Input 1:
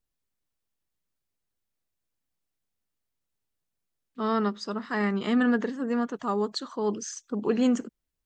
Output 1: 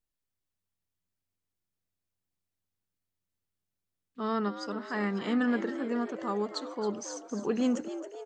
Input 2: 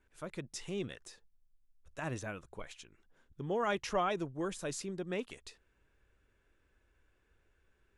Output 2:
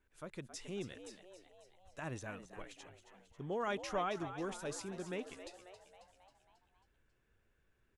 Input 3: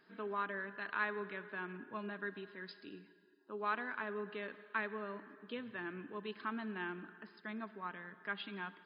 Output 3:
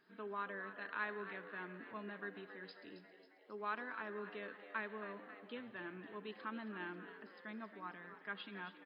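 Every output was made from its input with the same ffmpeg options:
-filter_complex "[0:a]asplit=7[a][b][c][d][e][f][g];[b]adelay=271,afreqshift=90,volume=-11.5dB[h];[c]adelay=542,afreqshift=180,volume=-16.4dB[i];[d]adelay=813,afreqshift=270,volume=-21.3dB[j];[e]adelay=1084,afreqshift=360,volume=-26.1dB[k];[f]adelay=1355,afreqshift=450,volume=-31dB[l];[g]adelay=1626,afreqshift=540,volume=-35.9dB[m];[a][h][i][j][k][l][m]amix=inputs=7:normalize=0,volume=-4.5dB"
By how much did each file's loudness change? -4.0, -4.5, -4.0 LU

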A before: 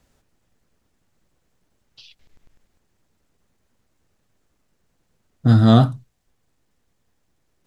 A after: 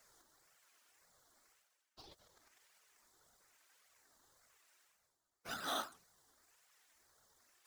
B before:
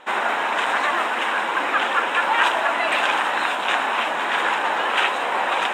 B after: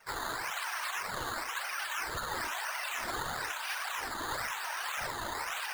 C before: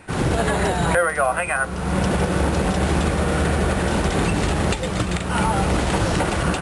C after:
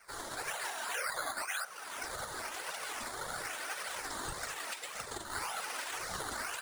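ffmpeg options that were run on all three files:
-filter_complex "[0:a]afftfilt=real='hypot(re,im)*cos(2*PI*random(0))':imag='hypot(re,im)*sin(2*PI*random(1))':win_size=512:overlap=0.75,highpass=1.3k,acrossover=split=3800[a][b];[a]acrusher=samples=11:mix=1:aa=0.000001:lfo=1:lforange=11:lforate=1[c];[c][b]amix=inputs=2:normalize=0,alimiter=limit=-24dB:level=0:latency=1:release=35,areverse,acompressor=mode=upward:threshold=-53dB:ratio=2.5,areverse,flanger=delay=1.3:depth=2.1:regen=-22:speed=1.8:shape=triangular"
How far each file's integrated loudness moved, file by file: -29.0, -15.0, -17.5 LU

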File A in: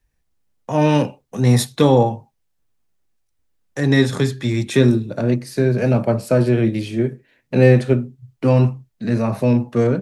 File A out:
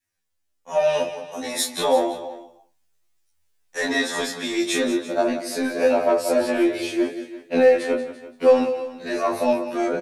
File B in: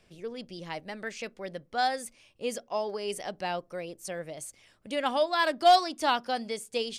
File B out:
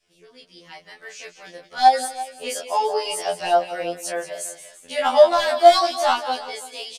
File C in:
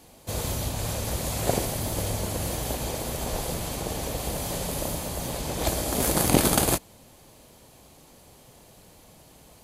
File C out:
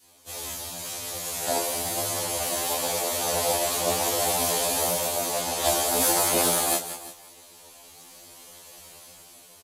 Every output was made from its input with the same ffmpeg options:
-filter_complex "[0:a]alimiter=limit=-8dB:level=0:latency=1:release=294,asplit=2[a][b];[b]aecho=0:1:180:0.237[c];[a][c]amix=inputs=2:normalize=0,dynaudnorm=f=680:g=5:m=14dB,asplit=2[d][e];[e]highpass=f=720:p=1,volume=12dB,asoftclip=type=tanh:threshold=-0.5dB[f];[d][f]amix=inputs=2:normalize=0,lowpass=f=7.3k:p=1,volume=-6dB,flanger=delay=20:depth=6.3:speed=0.96,highshelf=f=4.2k:g=9.5,bandreject=f=55.2:t=h:w=4,bandreject=f=110.4:t=h:w=4,bandreject=f=165.6:t=h:w=4,bandreject=f=220.8:t=h:w=4,adynamicequalizer=threshold=0.0355:dfrequency=680:dqfactor=0.98:tfrequency=680:tqfactor=0.98:attack=5:release=100:ratio=0.375:range=4:mode=boostabove:tftype=bell,asplit=2[g][h];[h]aecho=0:1:338:0.141[i];[g][i]amix=inputs=2:normalize=0,afftfilt=real='re*2*eq(mod(b,4),0)':imag='im*2*eq(mod(b,4),0)':win_size=2048:overlap=0.75,volume=-7dB"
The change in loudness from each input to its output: -4.0, +10.0, +3.0 LU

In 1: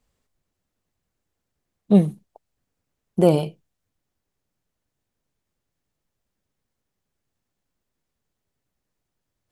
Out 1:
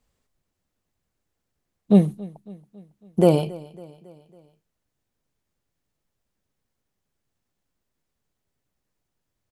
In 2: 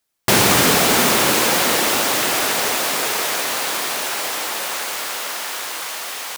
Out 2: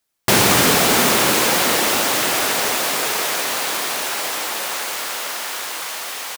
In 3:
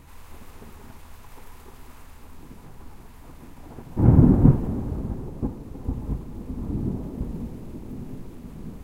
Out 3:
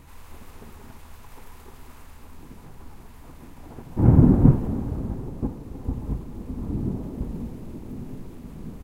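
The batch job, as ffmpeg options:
-af "aecho=1:1:276|552|828|1104:0.0891|0.0481|0.026|0.014"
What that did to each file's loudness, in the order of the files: -0.5, 0.0, 0.0 LU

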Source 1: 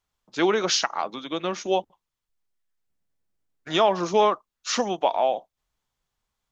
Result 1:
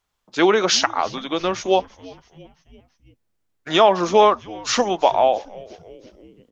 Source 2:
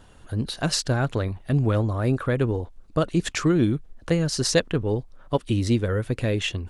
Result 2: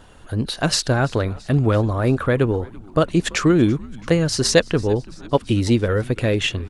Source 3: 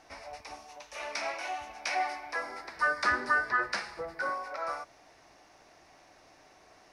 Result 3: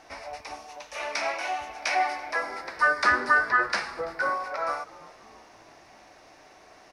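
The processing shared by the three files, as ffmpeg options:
-filter_complex "[0:a]bass=f=250:g=-3,treble=f=4k:g=-2,asplit=5[a][b][c][d][e];[b]adelay=335,afreqshift=-110,volume=-22dB[f];[c]adelay=670,afreqshift=-220,volume=-26.6dB[g];[d]adelay=1005,afreqshift=-330,volume=-31.2dB[h];[e]adelay=1340,afreqshift=-440,volume=-35.7dB[i];[a][f][g][h][i]amix=inputs=5:normalize=0,volume=6dB"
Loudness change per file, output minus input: +5.5, +4.5, +6.0 LU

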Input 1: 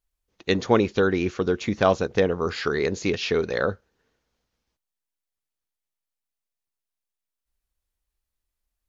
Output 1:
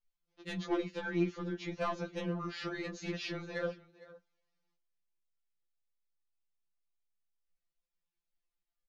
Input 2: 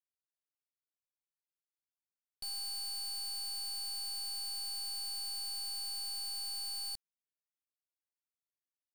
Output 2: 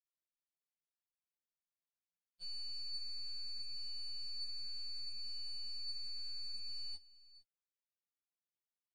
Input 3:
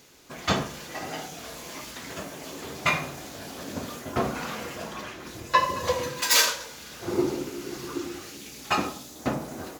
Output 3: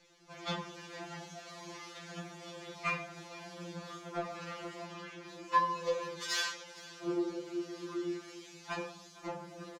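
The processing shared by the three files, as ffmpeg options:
-filter_complex "[0:a]lowpass=5.7k,asplit=2[a][b];[b]acompressor=threshold=-33dB:ratio=6,volume=-3dB[c];[a][c]amix=inputs=2:normalize=0,asoftclip=type=tanh:threshold=-12dB,aecho=1:1:458:0.106,flanger=delay=4:depth=7.3:regen=58:speed=0.68:shape=sinusoidal,afftfilt=real='re*2.83*eq(mod(b,8),0)':imag='im*2.83*eq(mod(b,8),0)':win_size=2048:overlap=0.75,volume=-6dB"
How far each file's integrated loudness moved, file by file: -14.0, -6.5, -10.0 LU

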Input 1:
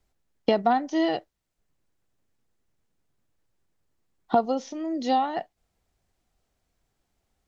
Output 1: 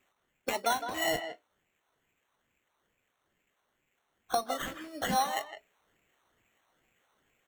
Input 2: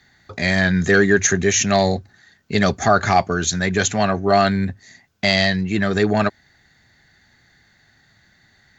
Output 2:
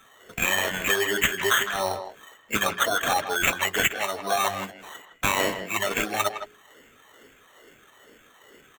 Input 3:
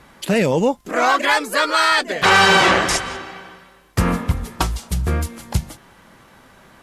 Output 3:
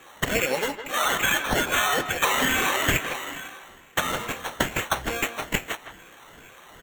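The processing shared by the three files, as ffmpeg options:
-filter_complex "[0:a]afftfilt=real='re*pow(10,22/40*sin(2*PI*(1.8*log(max(b,1)*sr/1024/100)/log(2)-(2.3)*(pts-256)/sr)))':imag='im*pow(10,22/40*sin(2*PI*(1.8*log(max(b,1)*sr/1024/100)/log(2)-(2.3)*(pts-256)/sr)))':win_size=1024:overlap=0.75,flanger=delay=1:depth=9.5:regen=-71:speed=0.3:shape=sinusoidal,crystalizer=i=5.5:c=0,highpass=f=52:p=1,bass=f=250:g=-12,treble=f=4k:g=3,bandreject=f=60:t=h:w=6,bandreject=f=120:t=h:w=6,bandreject=f=180:t=h:w=6,bandreject=f=240:t=h:w=6,bandreject=f=300:t=h:w=6,bandreject=f=360:t=h:w=6,bandreject=f=420:t=h:w=6,aresample=22050,aresample=44100,equalizer=f=200:w=2.2:g=-2.5,bandreject=f=910:w=11,acompressor=threshold=-13dB:ratio=12,acrusher=samples=9:mix=1:aa=0.000001,asplit=2[a][b];[b]adelay=160,highpass=300,lowpass=3.4k,asoftclip=type=hard:threshold=-8.5dB,volume=-9dB[c];[a][c]amix=inputs=2:normalize=0,volume=-6.5dB"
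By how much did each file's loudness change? -6.5, -6.5, -7.0 LU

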